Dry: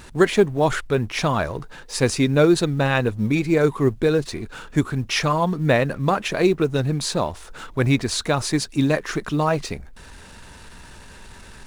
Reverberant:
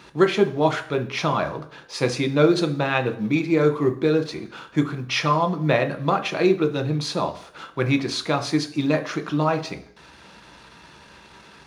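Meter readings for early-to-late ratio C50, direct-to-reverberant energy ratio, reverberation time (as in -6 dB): 14.0 dB, 6.0 dB, 0.55 s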